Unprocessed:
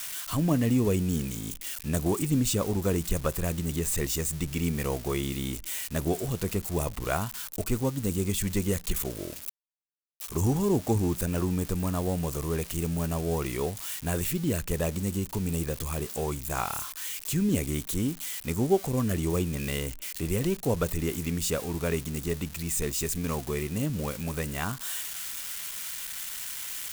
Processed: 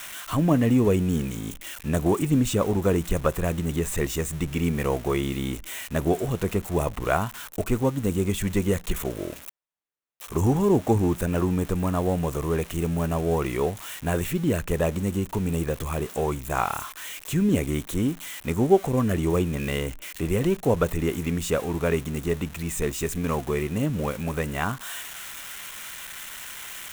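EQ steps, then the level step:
low-shelf EQ 330 Hz −5.5 dB
high-shelf EQ 3,400 Hz −12 dB
parametric band 4,700 Hz −6.5 dB 0.33 octaves
+8.0 dB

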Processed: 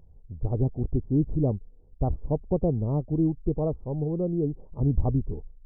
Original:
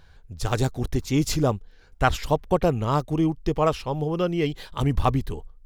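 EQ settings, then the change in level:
Gaussian smoothing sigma 15 samples
0.0 dB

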